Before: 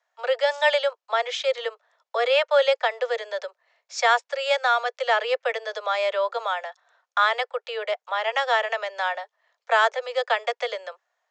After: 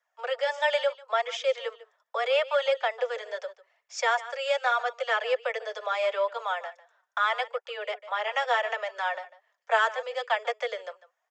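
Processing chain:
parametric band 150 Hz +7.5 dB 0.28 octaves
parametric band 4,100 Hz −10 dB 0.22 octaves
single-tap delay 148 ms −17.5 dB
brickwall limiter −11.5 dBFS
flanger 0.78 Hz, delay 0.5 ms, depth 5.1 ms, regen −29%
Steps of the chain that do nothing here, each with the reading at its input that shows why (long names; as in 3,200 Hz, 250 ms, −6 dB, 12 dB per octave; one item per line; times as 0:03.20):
parametric band 150 Hz: nothing at its input below 380 Hz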